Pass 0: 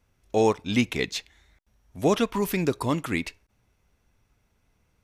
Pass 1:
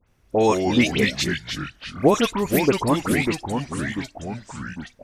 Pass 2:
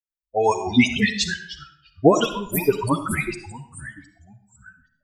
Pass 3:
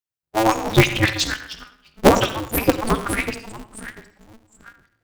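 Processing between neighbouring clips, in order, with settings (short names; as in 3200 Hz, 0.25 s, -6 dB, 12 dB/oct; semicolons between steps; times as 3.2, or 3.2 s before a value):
harmonic-percussive split percussive +5 dB; echoes that change speed 90 ms, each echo -3 st, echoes 3, each echo -6 dB; dispersion highs, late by 74 ms, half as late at 2400 Hz; gain +1.5 dB
per-bin expansion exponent 3; reverb RT60 0.65 s, pre-delay 20 ms, DRR 8.5 dB; gain +5.5 dB
polarity switched at an audio rate 110 Hz; gain +1.5 dB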